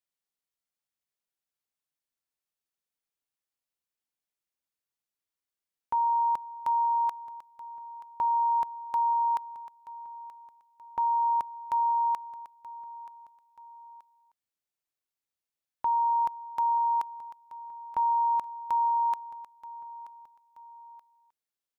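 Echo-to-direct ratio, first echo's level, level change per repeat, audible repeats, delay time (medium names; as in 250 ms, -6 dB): -16.0 dB, -17.0 dB, -7.0 dB, 2, 929 ms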